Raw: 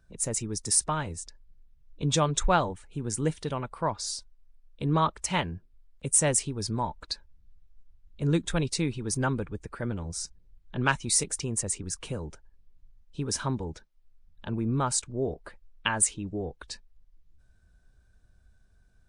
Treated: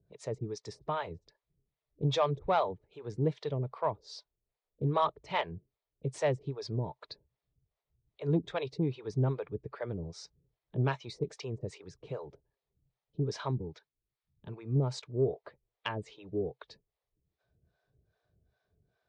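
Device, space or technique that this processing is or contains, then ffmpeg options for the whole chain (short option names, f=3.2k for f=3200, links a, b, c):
guitar amplifier with harmonic tremolo: -filter_complex "[0:a]acrossover=split=490[a][b];[a]aeval=exprs='val(0)*(1-1/2+1/2*cos(2*PI*2.5*n/s))':c=same[c];[b]aeval=exprs='val(0)*(1-1/2-1/2*cos(2*PI*2.5*n/s))':c=same[d];[c][d]amix=inputs=2:normalize=0,asoftclip=type=tanh:threshold=-18.5dB,highpass=110,equalizer=f=130:t=q:w=4:g=7,equalizer=f=230:t=q:w=4:g=-7,equalizer=f=430:t=q:w=4:g=8,equalizer=f=640:t=q:w=4:g=5,equalizer=f=1.5k:t=q:w=4:g=-7,equalizer=f=2.8k:t=q:w=4:g=-5,lowpass=f=4.3k:w=0.5412,lowpass=f=4.3k:w=1.3066,asettb=1/sr,asplit=3[e][f][g];[e]atrim=end=13.514[h];[f]atrim=start=13.51:end=14.76,asetpts=PTS-STARTPTS,afade=t=in:d=0.004:c=qsin,afade=t=out:st=1.246:d=0.004:c=qsin,equalizer=f=590:w=1.2:g=-9[i];[g]atrim=start=14.756[j];[h][i]acrossfade=d=0.004:c1=hsin:c2=qsin[k];[k][j]acrossfade=d=0.004:c1=qsin:c2=hsin"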